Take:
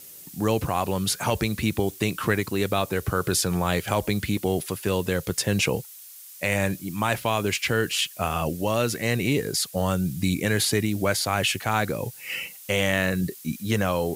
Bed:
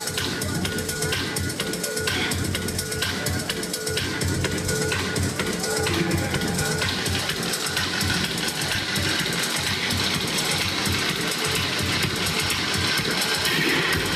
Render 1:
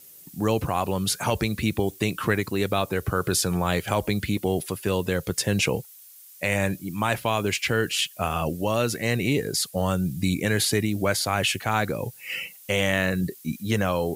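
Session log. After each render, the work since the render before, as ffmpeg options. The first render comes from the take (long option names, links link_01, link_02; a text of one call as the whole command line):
ffmpeg -i in.wav -af "afftdn=noise_reduction=6:noise_floor=-45" out.wav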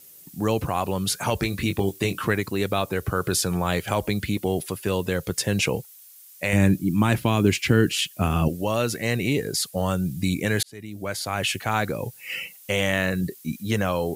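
ffmpeg -i in.wav -filter_complex "[0:a]asettb=1/sr,asplit=3[link_01][link_02][link_03];[link_01]atrim=end=1.404[link_04];[link_02]atrim=start=1.4:end=2.21,asetpts=PTS-STARTPTS,afade=type=in:duration=0.004:curve=qsin,afade=type=out:start_time=0.806:duration=0.004:curve=qsin,asplit=2[link_05][link_06];[link_06]adelay=21,volume=-6dB[link_07];[link_05][link_07]amix=inputs=2:normalize=0,atrim=end_sample=35721[link_08];[link_03]atrim=start=2.206[link_09];[link_04][link_08]acrossfade=duration=0.004:curve1=hsin:curve2=qsin[link_10];[link_10][link_09]acrossfade=duration=0.004:curve1=qsin:curve2=hsin,asettb=1/sr,asplit=3[link_11][link_12][link_13];[link_11]atrim=end=6.534[link_14];[link_12]atrim=start=6.53:end=8.48,asetpts=PTS-STARTPTS,afade=type=in:duration=0.004:curve=qsin,afade=type=out:start_time=1.946:duration=0.004:curve=qsin,lowshelf=frequency=420:width_type=q:width=1.5:gain=8[link_15];[link_13]atrim=start=8.476[link_16];[link_14][link_15]acrossfade=duration=0.004:curve1=hsin:curve2=qsin[link_17];[link_17][link_16]acrossfade=duration=0.004:curve1=qsin:curve2=hsin,asplit=2[link_18][link_19];[link_18]atrim=end=10.63,asetpts=PTS-STARTPTS,afade=type=out:start_time=10.626:duration=0.004:curve=hsin[link_20];[link_19]atrim=start=10.63,asetpts=PTS-STARTPTS,afade=type=in:duration=0.97[link_21];[link_20][link_21]concat=n=2:v=0:a=1" out.wav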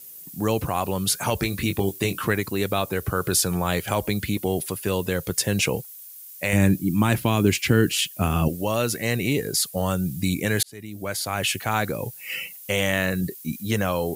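ffmpeg -i in.wav -af "highshelf=frequency=10000:gain=9" out.wav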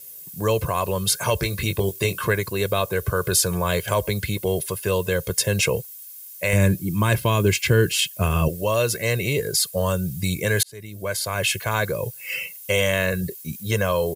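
ffmpeg -i in.wav -af "aecho=1:1:1.9:0.71" out.wav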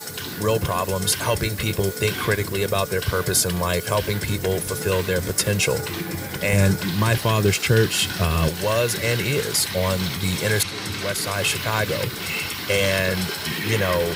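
ffmpeg -i in.wav -i bed.wav -filter_complex "[1:a]volume=-6dB[link_01];[0:a][link_01]amix=inputs=2:normalize=0" out.wav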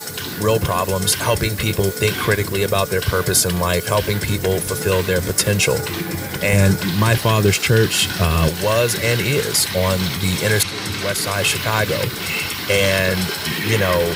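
ffmpeg -i in.wav -af "volume=4dB,alimiter=limit=-3dB:level=0:latency=1" out.wav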